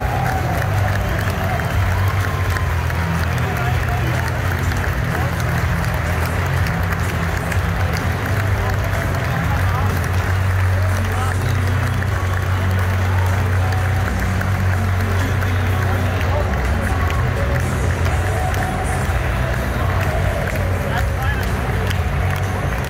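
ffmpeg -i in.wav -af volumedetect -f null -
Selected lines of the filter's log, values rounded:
mean_volume: -18.0 dB
max_volume: -5.2 dB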